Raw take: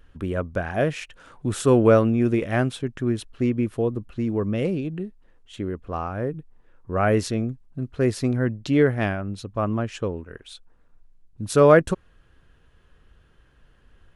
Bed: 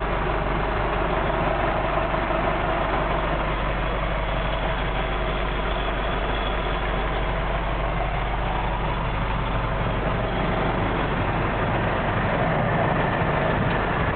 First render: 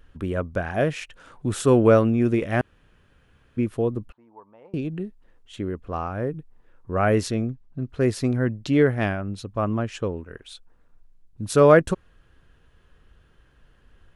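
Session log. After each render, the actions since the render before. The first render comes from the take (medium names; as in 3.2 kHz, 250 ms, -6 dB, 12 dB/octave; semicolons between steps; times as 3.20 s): 2.61–3.57 s: room tone; 4.12–4.74 s: band-pass filter 900 Hz, Q 11; 7.47–7.89 s: distance through air 75 m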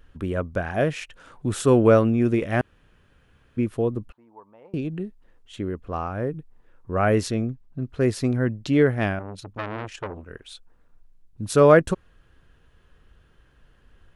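9.19–10.24 s: transformer saturation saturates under 1.5 kHz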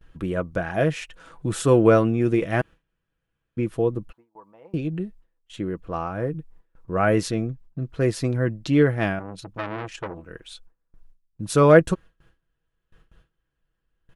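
gate with hold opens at -44 dBFS; comb 6.1 ms, depth 42%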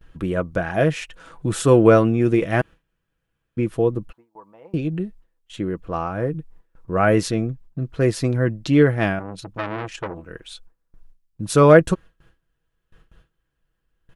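trim +3 dB; peak limiter -1 dBFS, peak gain reduction 2 dB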